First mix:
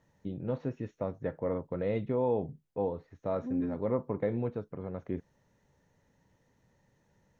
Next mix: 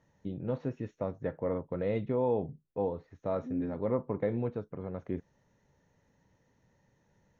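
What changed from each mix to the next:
second voice: add band-pass 310 Hz, Q 2.5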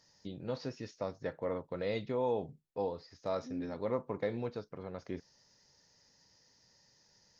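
first voice: remove running mean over 9 samples; master: add low shelf 430 Hz -8 dB

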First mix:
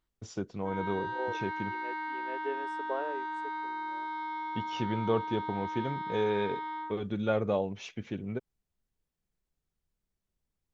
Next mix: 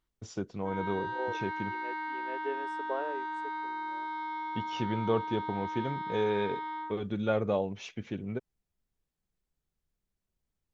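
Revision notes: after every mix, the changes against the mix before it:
none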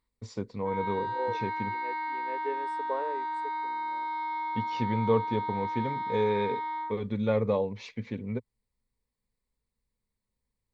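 master: add ripple EQ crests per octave 0.95, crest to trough 10 dB

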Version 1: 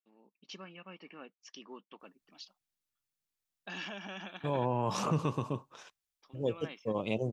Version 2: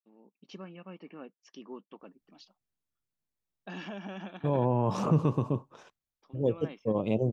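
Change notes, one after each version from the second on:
master: add tilt shelf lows +7 dB, about 1100 Hz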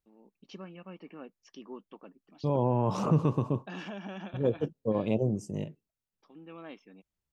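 second voice: entry -2.00 s

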